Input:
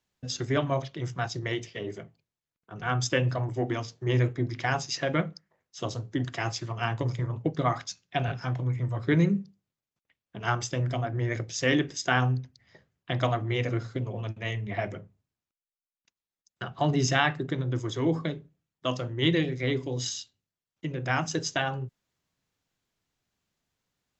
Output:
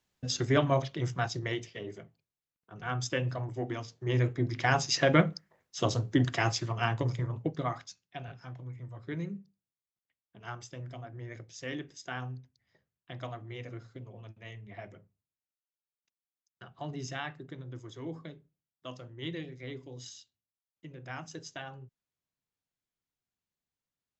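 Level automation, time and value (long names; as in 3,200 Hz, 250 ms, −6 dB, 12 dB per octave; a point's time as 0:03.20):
0:01.03 +1 dB
0:01.90 −6 dB
0:03.87 −6 dB
0:05.02 +4 dB
0:06.17 +4 dB
0:07.45 −4 dB
0:08.20 −14 dB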